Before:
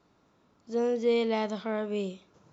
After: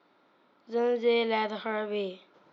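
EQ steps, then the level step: speaker cabinet 440–3600 Hz, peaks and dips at 450 Hz -6 dB, 770 Hz -4 dB, 1100 Hz -6 dB, 1700 Hz -3 dB, 2700 Hz -6 dB; notch 650 Hz, Q 16; +8.5 dB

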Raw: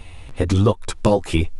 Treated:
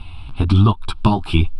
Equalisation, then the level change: air absorption 56 m; fixed phaser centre 1900 Hz, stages 6; +5.5 dB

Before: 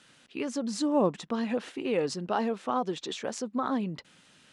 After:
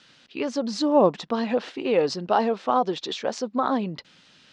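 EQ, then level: dynamic EQ 690 Hz, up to +7 dB, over -41 dBFS, Q 0.77; synth low-pass 4800 Hz, resonance Q 1.8; +2.0 dB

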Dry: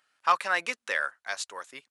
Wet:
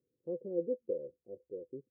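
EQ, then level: rippled Chebyshev low-pass 520 Hz, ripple 6 dB; +11.0 dB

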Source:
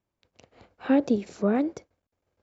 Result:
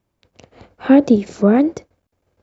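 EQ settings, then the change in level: low shelf 400 Hz +4 dB; +8.5 dB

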